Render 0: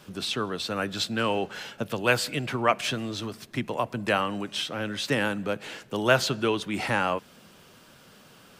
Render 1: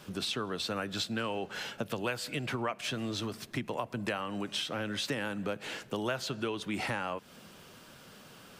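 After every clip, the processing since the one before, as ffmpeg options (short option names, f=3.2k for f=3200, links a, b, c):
-af "acompressor=threshold=-31dB:ratio=6"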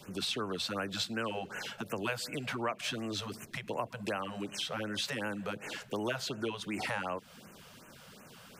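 -filter_complex "[0:a]acrossover=split=240|1000|6200[a][b][c][d];[a]alimiter=level_in=16dB:limit=-24dB:level=0:latency=1,volume=-16dB[e];[e][b][c][d]amix=inputs=4:normalize=0,afftfilt=real='re*(1-between(b*sr/1024,270*pow(4400/270,0.5+0.5*sin(2*PI*2.7*pts/sr))/1.41,270*pow(4400/270,0.5+0.5*sin(2*PI*2.7*pts/sr))*1.41))':imag='im*(1-between(b*sr/1024,270*pow(4400/270,0.5+0.5*sin(2*PI*2.7*pts/sr))/1.41,270*pow(4400/270,0.5+0.5*sin(2*PI*2.7*pts/sr))*1.41))':win_size=1024:overlap=0.75"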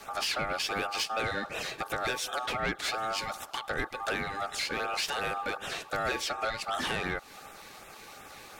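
-af "aeval=exprs='val(0)*sin(2*PI*1000*n/s)':c=same,asoftclip=type=tanh:threshold=-31dB,volume=8.5dB"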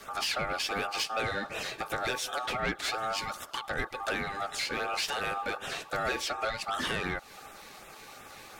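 -af "flanger=delay=0.6:depth=8.8:regen=-64:speed=0.29:shape=sinusoidal,volume=4dB"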